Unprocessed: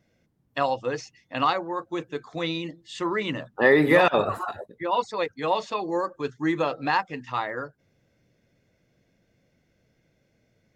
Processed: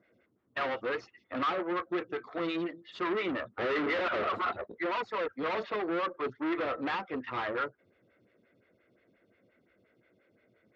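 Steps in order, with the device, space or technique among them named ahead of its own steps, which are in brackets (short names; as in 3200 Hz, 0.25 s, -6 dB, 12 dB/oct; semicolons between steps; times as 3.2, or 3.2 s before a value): vibe pedal into a guitar amplifier (photocell phaser 5.7 Hz; tube stage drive 36 dB, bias 0.55; speaker cabinet 92–3800 Hz, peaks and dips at 150 Hz -9 dB, 370 Hz +4 dB, 830 Hz -5 dB, 1300 Hz +7 dB, 2000 Hz +4 dB); gain +5.5 dB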